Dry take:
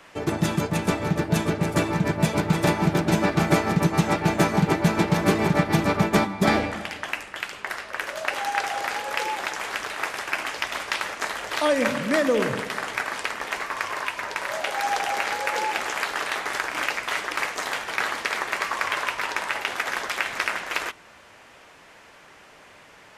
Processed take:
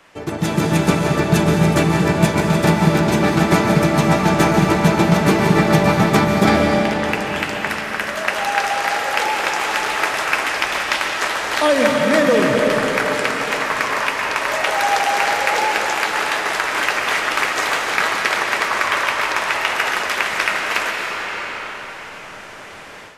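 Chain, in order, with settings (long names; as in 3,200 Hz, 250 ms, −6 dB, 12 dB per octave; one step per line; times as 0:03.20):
on a send at −1 dB: convolution reverb RT60 3.8 s, pre-delay 100 ms
on the sum: automatic gain control
level −1 dB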